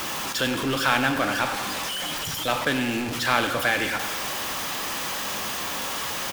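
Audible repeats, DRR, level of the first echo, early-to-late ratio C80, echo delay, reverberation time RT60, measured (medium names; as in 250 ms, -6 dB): 1, 7.0 dB, -12.5 dB, 8.5 dB, 99 ms, 1.9 s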